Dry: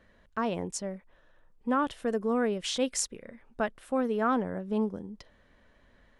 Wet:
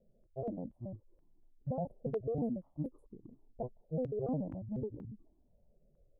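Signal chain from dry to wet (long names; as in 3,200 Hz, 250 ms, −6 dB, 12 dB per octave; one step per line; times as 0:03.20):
pitch shifter gated in a rhythm −9 semitones, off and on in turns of 71 ms
inverse Chebyshev band-stop filter 1,700–6,200 Hz, stop band 60 dB
low-pass that shuts in the quiet parts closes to 700 Hz, open at −24.5 dBFS
step-sequenced phaser 4.2 Hz 300–2,100 Hz
level −3 dB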